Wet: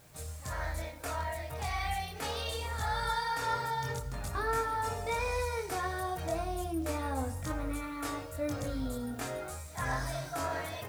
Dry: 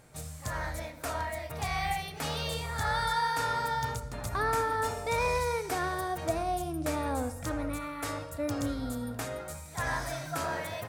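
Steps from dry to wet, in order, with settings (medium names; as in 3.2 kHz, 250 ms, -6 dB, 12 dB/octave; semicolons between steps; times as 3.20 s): in parallel at -3 dB: peak limiter -26 dBFS, peak gain reduction 8 dB; on the sum: chorus voices 4, 0.39 Hz, delay 23 ms, depth 1.5 ms; word length cut 10-bit, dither triangular; trim -3.5 dB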